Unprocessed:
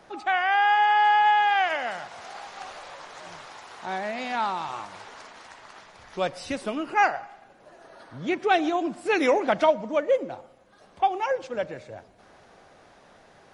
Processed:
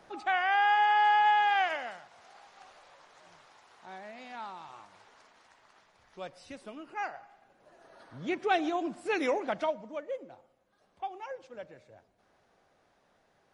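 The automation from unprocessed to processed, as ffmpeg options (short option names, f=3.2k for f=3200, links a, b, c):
-af "volume=4.5dB,afade=t=out:st=1.62:d=0.4:silence=0.298538,afade=t=in:st=7.04:d=1.14:silence=0.354813,afade=t=out:st=8.93:d=1.12:silence=0.354813"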